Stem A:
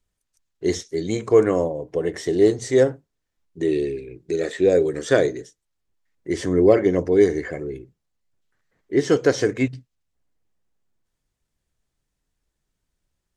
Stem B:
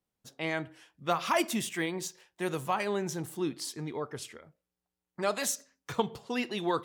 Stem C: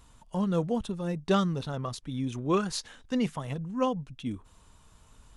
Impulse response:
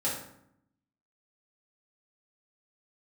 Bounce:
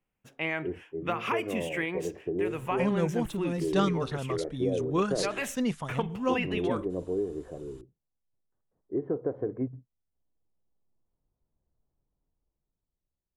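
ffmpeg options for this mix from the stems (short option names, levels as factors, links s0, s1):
-filter_complex "[0:a]lowpass=f=1000:w=0.5412,lowpass=f=1000:w=1.3066,dynaudnorm=f=200:g=11:m=3.76,volume=0.237[s0];[1:a]highshelf=f=3300:t=q:w=3:g=-8,volume=1.19[s1];[2:a]adelay=2450,volume=0.891[s2];[s0][s1]amix=inputs=2:normalize=0,acompressor=threshold=0.0501:ratio=6,volume=1[s3];[s2][s3]amix=inputs=2:normalize=0"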